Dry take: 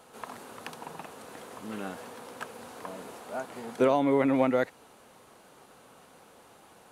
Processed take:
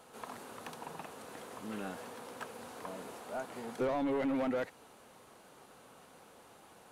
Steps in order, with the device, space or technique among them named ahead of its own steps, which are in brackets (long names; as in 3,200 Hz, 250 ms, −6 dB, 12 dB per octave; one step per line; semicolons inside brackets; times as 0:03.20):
saturation between pre-emphasis and de-emphasis (high-shelf EQ 2,000 Hz +11.5 dB; soft clipping −25.5 dBFS, distortion −7 dB; high-shelf EQ 2,000 Hz −11.5 dB)
level −2.5 dB